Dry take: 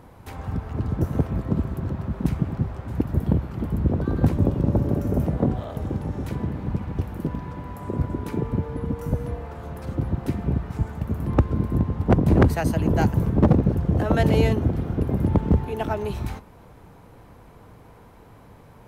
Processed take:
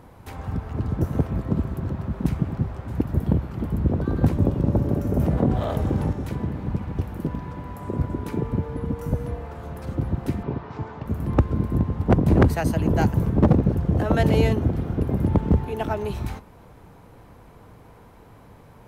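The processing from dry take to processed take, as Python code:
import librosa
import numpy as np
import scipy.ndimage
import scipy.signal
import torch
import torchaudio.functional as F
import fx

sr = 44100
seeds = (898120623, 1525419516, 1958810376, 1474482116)

y = fx.env_flatten(x, sr, amount_pct=50, at=(5.19, 6.13))
y = fx.cabinet(y, sr, low_hz=140.0, low_slope=12, high_hz=5300.0, hz=(190.0, 430.0, 1000.0), db=(-8, 3, 7), at=(10.43, 11.06))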